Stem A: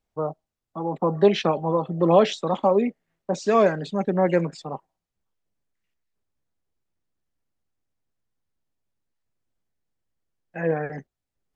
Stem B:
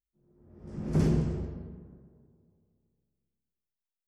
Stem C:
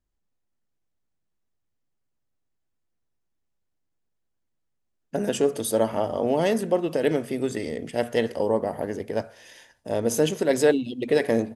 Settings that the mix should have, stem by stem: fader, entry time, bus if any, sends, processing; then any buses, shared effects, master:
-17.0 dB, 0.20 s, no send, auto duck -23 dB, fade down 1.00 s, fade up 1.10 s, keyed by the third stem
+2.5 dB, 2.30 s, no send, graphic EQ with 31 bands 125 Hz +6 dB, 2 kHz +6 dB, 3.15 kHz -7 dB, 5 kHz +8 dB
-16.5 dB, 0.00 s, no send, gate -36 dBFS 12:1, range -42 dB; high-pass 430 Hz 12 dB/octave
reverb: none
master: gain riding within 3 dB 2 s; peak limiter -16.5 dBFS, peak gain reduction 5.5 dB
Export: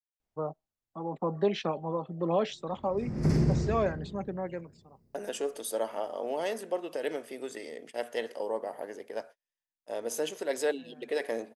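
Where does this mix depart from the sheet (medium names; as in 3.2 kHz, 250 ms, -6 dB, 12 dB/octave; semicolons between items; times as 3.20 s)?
stem A -17.0 dB -> -9.5 dB; stem C -16.5 dB -> -10.5 dB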